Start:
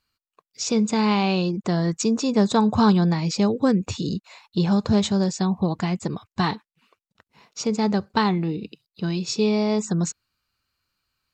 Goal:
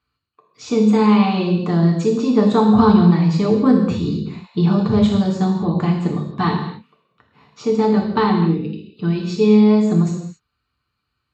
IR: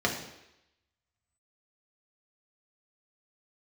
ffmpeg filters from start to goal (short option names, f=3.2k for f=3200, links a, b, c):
-filter_complex "[1:a]atrim=start_sample=2205,afade=t=out:st=0.22:d=0.01,atrim=end_sample=10143,asetrate=27342,aresample=44100[a];[0:a][a]afir=irnorm=-1:irlink=0,volume=-11dB"